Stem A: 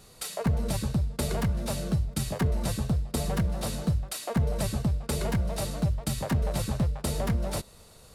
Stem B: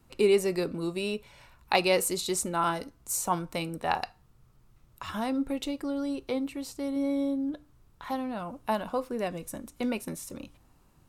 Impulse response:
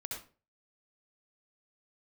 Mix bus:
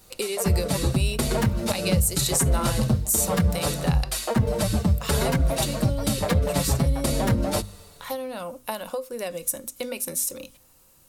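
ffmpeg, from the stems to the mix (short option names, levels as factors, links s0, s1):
-filter_complex "[0:a]dynaudnorm=f=150:g=7:m=2.82,asplit=2[s0][s1];[s1]adelay=6,afreqshift=-0.68[s2];[s0][s2]amix=inputs=2:normalize=1,volume=1.19[s3];[1:a]equalizer=f=520:t=o:w=0.23:g=13,acompressor=threshold=0.0501:ratio=12,crystalizer=i=6.5:c=0,volume=0.794[s4];[s3][s4]amix=inputs=2:normalize=0,bandreject=f=50:t=h:w=6,bandreject=f=100:t=h:w=6,bandreject=f=150:t=h:w=6,bandreject=f=200:t=h:w=6,bandreject=f=250:t=h:w=6,alimiter=limit=0.266:level=0:latency=1:release=148"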